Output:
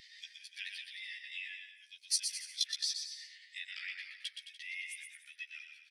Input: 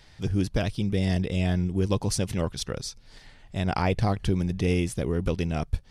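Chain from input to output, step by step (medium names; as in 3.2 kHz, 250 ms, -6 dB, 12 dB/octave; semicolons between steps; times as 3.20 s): level held to a coarse grid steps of 15 dB; dynamic bell 6.6 kHz, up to -7 dB, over -59 dBFS, Q 0.99; saturation -22 dBFS, distortion -19 dB; compression 10:1, threshold -40 dBFS, peak gain reduction 12 dB; elliptic high-pass 1.9 kHz, stop band 60 dB; doubling 14 ms -2 dB; bouncing-ball echo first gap 120 ms, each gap 0.8×, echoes 5; spectral contrast expander 1.5:1; trim +15.5 dB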